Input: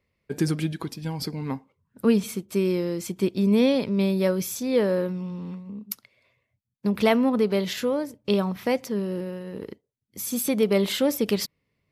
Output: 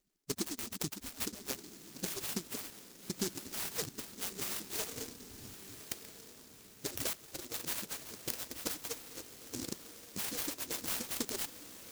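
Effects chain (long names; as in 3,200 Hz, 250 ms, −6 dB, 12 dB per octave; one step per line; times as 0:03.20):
harmonic-percussive split with one part muted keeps percussive
0:04.91–0:05.59: spectral tilt −2.5 dB per octave
0:07.13–0:07.54: Chebyshev band-stop filter 820–4,500 Hz, order 4
downward compressor 5 to 1, threshold −35 dBFS, peak gain reduction 13 dB
0:02.70–0:03.10: tuned comb filter 230 Hz, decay 0.45 s, harmonics all, mix 100%
feedback delay with all-pass diffusion 1,231 ms, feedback 50%, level −12 dB
short delay modulated by noise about 5,800 Hz, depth 0.36 ms
level +1 dB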